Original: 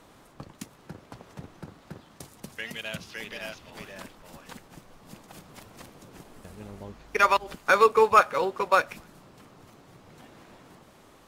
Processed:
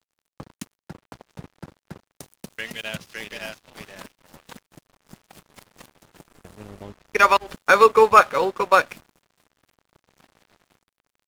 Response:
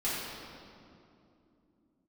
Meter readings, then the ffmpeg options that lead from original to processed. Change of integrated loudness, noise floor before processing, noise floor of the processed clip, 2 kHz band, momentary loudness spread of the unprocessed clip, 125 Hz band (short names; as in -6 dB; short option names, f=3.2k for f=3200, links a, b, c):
+6.0 dB, -55 dBFS, under -85 dBFS, +5.0 dB, 23 LU, +2.0 dB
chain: -af "aeval=exprs='sgn(val(0))*max(abs(val(0))-0.00473,0)':c=same,volume=5.5dB"